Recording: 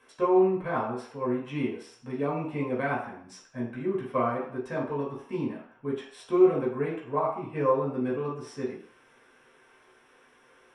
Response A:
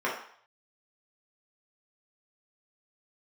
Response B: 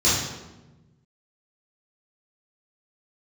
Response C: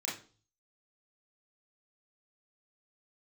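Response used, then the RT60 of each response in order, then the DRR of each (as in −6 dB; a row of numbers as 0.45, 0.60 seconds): A; 0.60, 1.1, 0.40 seconds; −5.5, −11.0, −6.0 decibels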